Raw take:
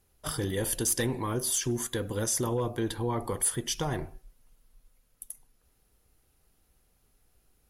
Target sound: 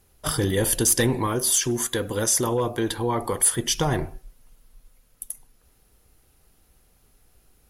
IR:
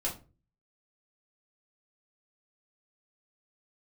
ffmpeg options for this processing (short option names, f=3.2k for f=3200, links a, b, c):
-filter_complex "[0:a]asettb=1/sr,asplit=3[a][b][c];[a]atrim=end=1.274[d];[b]atrim=start=1.27:end=3.59,asetpts=PTS-STARTPTS,afade=t=in:d=0.004:c=qsin,afade=t=out:st=2.316:d=0.004:c=qsin,lowshelf=f=260:g=-6.5[e];[c]atrim=start=3.586[f];[d][e]acrossfade=d=0.004:c1=hsin:c2=qsin[g];[g][f]acrossfade=d=0.004:c1=qsin:c2=hsin,volume=8dB"